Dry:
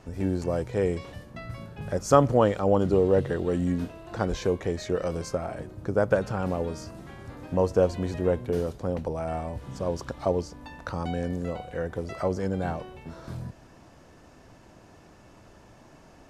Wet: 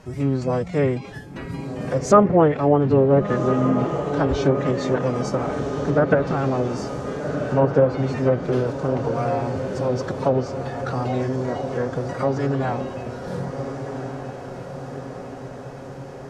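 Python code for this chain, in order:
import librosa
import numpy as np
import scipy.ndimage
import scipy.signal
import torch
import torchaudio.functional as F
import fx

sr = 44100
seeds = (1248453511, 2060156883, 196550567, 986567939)

y = fx.pitch_keep_formants(x, sr, semitones=6.5)
y = fx.echo_diffused(y, sr, ms=1448, feedback_pct=63, wet_db=-8.0)
y = fx.env_lowpass_down(y, sr, base_hz=1900.0, full_db=-17.5)
y = y * 10.0 ** (5.5 / 20.0)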